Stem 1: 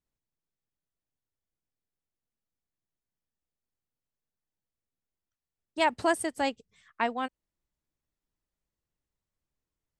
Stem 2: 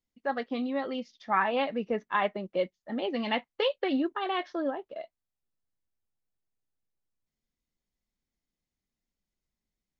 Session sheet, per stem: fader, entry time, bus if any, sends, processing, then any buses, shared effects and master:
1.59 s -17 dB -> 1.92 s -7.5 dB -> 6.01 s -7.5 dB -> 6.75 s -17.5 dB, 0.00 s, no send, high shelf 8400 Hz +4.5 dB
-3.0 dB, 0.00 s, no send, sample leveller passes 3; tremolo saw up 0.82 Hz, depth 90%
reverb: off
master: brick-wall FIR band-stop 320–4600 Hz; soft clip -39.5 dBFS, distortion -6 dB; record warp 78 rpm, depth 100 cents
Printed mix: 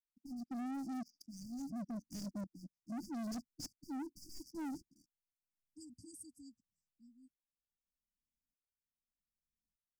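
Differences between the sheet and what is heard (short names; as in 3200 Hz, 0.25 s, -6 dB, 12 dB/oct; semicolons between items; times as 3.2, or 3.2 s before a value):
stem 1 -17.0 dB -> -23.5 dB; master: missing record warp 78 rpm, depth 100 cents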